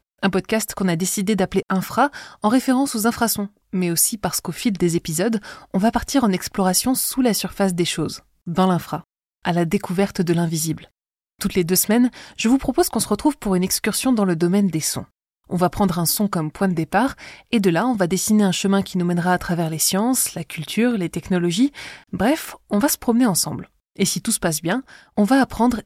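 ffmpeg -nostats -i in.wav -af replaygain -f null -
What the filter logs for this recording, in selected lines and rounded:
track_gain = +0.7 dB
track_peak = 0.433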